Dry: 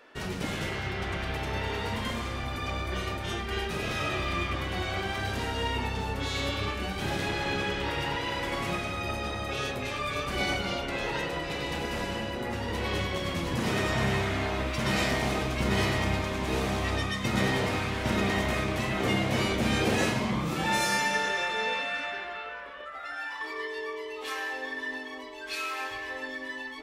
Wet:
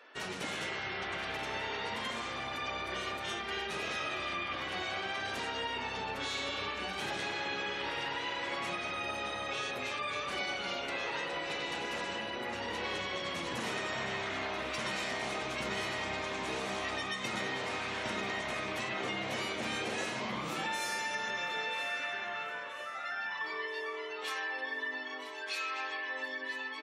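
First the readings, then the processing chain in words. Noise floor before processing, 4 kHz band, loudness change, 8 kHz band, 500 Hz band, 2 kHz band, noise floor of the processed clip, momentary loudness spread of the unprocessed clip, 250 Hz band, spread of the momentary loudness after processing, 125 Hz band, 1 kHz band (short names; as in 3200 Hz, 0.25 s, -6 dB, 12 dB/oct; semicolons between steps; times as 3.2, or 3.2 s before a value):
-39 dBFS, -3.5 dB, -5.5 dB, -6.0 dB, -7.0 dB, -3.5 dB, -41 dBFS, 8 LU, -11.5 dB, 3 LU, -17.5 dB, -4.5 dB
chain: HPF 590 Hz 6 dB/oct; spectral gate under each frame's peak -30 dB strong; notch 4900 Hz, Q 23; compressor, threshold -33 dBFS, peak gain reduction 8.5 dB; feedback echo 0.983 s, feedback 51%, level -14 dB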